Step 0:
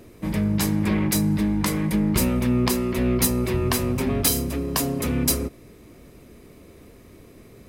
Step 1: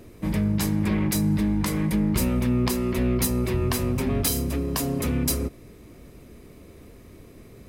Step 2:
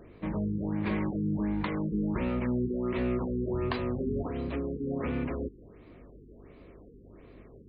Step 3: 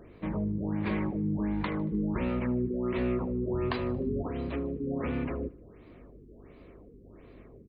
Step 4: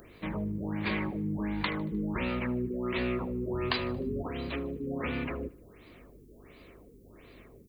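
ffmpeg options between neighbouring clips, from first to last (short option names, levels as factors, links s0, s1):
-filter_complex "[0:a]lowshelf=f=130:g=4.5,asplit=2[s0][s1];[s1]alimiter=limit=0.158:level=0:latency=1:release=193,volume=1.12[s2];[s0][s2]amix=inputs=2:normalize=0,volume=0.422"
-af "aeval=exprs='val(0)+0.00501*(sin(2*PI*50*n/s)+sin(2*PI*2*50*n/s)/2+sin(2*PI*3*50*n/s)/3+sin(2*PI*4*50*n/s)/4+sin(2*PI*5*50*n/s)/5)':c=same,bass=f=250:g=-8,treble=f=4000:g=-11,afftfilt=real='re*lt(b*sr/1024,460*pow(4900/460,0.5+0.5*sin(2*PI*1.4*pts/sr)))':imag='im*lt(b*sr/1024,460*pow(4900/460,0.5+0.5*sin(2*PI*1.4*pts/sr)))':win_size=1024:overlap=0.75,volume=0.794"
-af "aecho=1:1:76|152|228|304:0.0891|0.0455|0.0232|0.0118"
-af "crystalizer=i=8:c=0,volume=0.708"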